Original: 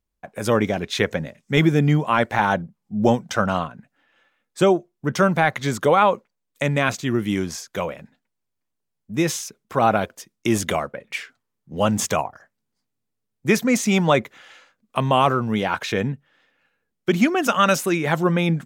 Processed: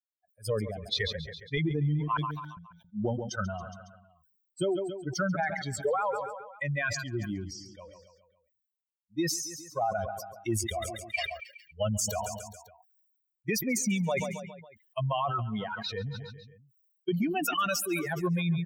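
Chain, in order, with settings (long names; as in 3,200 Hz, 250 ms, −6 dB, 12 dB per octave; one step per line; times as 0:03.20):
spectral dynamics exaggerated over time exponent 3
brickwall limiter −19.5 dBFS, peak gain reduction 10 dB
downward compressor 3 to 1, threshold −31 dBFS, peak gain reduction 7 dB
0:02.17–0:02.57: inverse Chebyshev high-pass filter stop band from 2,000 Hz, stop band 40 dB
0:07.53–0:07.93: high-frequency loss of the air 87 metres
repeating echo 138 ms, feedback 57%, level −21 dB
level that may fall only so fast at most 46 dB per second
level +3.5 dB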